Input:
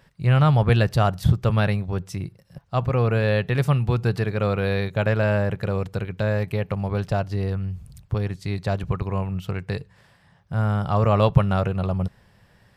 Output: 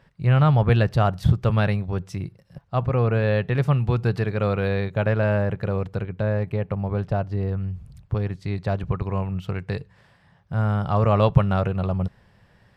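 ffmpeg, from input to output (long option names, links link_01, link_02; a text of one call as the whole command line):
ffmpeg -i in.wav -af "asetnsamples=nb_out_samples=441:pad=0,asendcmd='1.16 lowpass f 4500;2.65 lowpass f 2400;3.78 lowpass f 4100;4.68 lowpass f 2300;6.03 lowpass f 1300;7.58 lowpass f 2500;9.02 lowpass f 4300',lowpass=frequency=2900:poles=1" out.wav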